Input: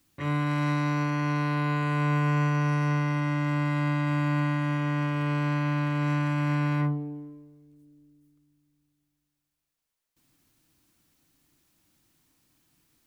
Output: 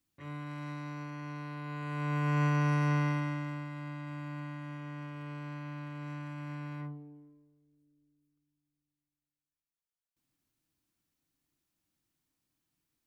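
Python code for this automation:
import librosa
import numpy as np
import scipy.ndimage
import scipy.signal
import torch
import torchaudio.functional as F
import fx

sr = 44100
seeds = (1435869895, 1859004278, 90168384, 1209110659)

y = fx.gain(x, sr, db=fx.line((1.62, -14.5), (2.45, -3.0), (3.07, -3.0), (3.69, -15.0)))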